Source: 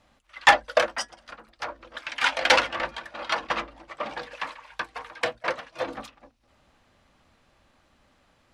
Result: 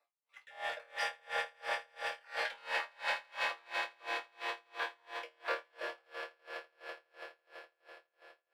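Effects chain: random spectral dropouts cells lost 21%; steep high-pass 360 Hz 48 dB/oct; bell 6500 Hz -12 dB 0.41 oct; sample leveller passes 1; resonator bank D#2 fifth, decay 0.61 s; swelling echo 83 ms, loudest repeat 8, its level -11 dB; dB-linear tremolo 2.9 Hz, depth 33 dB; gain +5 dB

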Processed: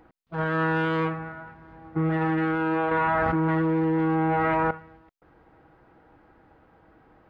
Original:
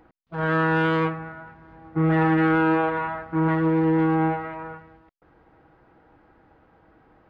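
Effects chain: limiter -17 dBFS, peak gain reduction 7 dB; 2.91–4.71 fast leveller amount 100%

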